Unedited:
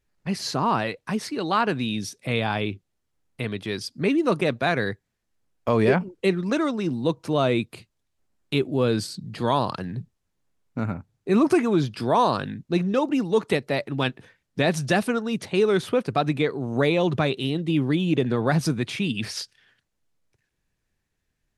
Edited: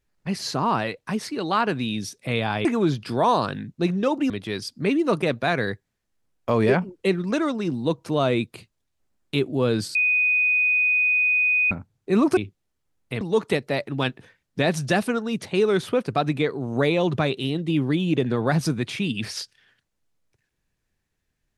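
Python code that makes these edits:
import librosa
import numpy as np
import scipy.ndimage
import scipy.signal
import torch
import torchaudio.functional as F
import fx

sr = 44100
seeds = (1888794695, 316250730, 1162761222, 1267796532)

y = fx.edit(x, sr, fx.swap(start_s=2.65, length_s=0.84, other_s=11.56, other_length_s=1.65),
    fx.bleep(start_s=9.14, length_s=1.76, hz=2490.0, db=-17.0), tone=tone)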